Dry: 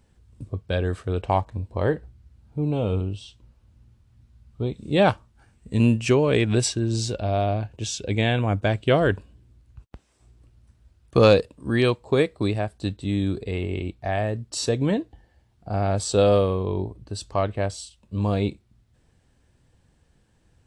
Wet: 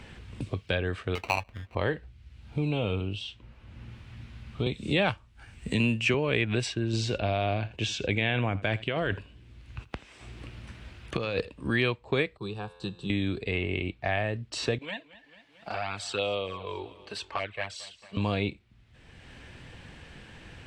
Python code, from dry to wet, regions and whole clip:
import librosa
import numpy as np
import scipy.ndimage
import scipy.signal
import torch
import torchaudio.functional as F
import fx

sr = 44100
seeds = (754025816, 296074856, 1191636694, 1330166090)

y = fx.chain(x, sr, fx.tilt_shelf(db=-8.5, hz=1100.0),
    fx.sample_hold(seeds[0], rate_hz=1700.0, jitter_pct=0), at=(1.15, 1.75))
y = fx.chain(y, sr, fx.high_shelf(hz=5200.0, db=10.5),
    fx.band_squash(depth_pct=40), at=(4.66, 6.14))
y = fx.chain(y, sr, fx.over_compress(threshold_db=-23.0, ratio=-1.0),
    fx.echo_single(ms=82, db=-20.0), at=(6.93, 11.67))
y = fx.chain(y, sr, fx.fixed_phaser(hz=410.0, stages=8),
    fx.comb_fb(f0_hz=87.0, decay_s=1.1, harmonics='all', damping=0.0, mix_pct=50), at=(12.37, 13.1))
y = fx.chain(y, sr, fx.highpass(hz=1300.0, slope=6),
    fx.env_flanger(rest_ms=6.3, full_db=-24.0),
    fx.echo_feedback(ms=223, feedback_pct=42, wet_db=-22.5), at=(14.78, 18.17))
y = fx.lowpass(y, sr, hz=3300.0, slope=6)
y = fx.peak_eq(y, sr, hz=2500.0, db=12.5, octaves=1.6)
y = fx.band_squash(y, sr, depth_pct=70)
y = y * 10.0 ** (-6.0 / 20.0)